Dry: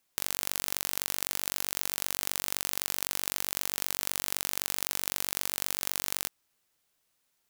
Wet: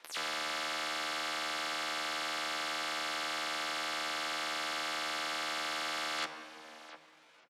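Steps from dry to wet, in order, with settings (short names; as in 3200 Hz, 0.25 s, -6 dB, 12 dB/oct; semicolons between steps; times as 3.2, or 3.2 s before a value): spectral delay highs early, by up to 0.102 s; dynamic EQ 1600 Hz, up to -4 dB, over -56 dBFS, Q 1.4; compressor 12:1, threshold -39 dBFS, peak gain reduction 14 dB; sine folder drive 14 dB, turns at -16 dBFS; pitch shift +8.5 st; BPF 430–2800 Hz; echo 0.702 s -18.5 dB; shoebox room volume 2300 m³, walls mixed, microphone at 0.75 m; core saturation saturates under 4000 Hz; gain +7 dB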